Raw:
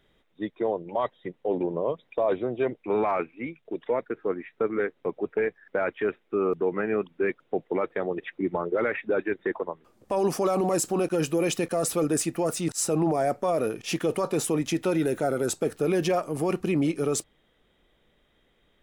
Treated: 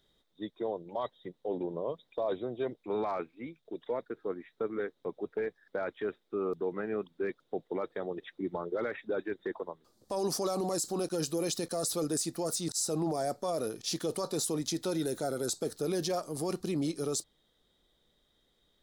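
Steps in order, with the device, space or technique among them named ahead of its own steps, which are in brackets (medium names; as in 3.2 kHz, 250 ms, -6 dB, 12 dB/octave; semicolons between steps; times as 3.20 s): over-bright horn tweeter (resonant high shelf 3.3 kHz +8 dB, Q 3; peak limiter -15 dBFS, peak gain reduction 8.5 dB); trim -7.5 dB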